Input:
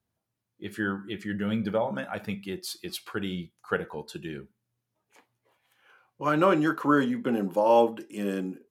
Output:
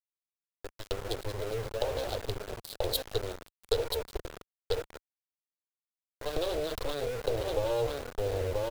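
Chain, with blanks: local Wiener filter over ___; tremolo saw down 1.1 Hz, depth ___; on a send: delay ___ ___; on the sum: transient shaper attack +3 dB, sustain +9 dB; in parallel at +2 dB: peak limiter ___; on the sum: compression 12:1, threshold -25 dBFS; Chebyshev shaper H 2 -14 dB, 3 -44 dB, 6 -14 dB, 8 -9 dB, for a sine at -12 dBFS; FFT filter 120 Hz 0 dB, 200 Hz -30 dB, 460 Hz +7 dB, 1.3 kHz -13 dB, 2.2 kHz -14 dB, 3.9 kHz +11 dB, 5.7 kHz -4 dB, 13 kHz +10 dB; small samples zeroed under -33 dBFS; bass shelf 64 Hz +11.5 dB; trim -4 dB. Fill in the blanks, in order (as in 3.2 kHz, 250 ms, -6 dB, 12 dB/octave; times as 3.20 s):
15 samples, 90%, 984 ms, -10.5 dB, -17.5 dBFS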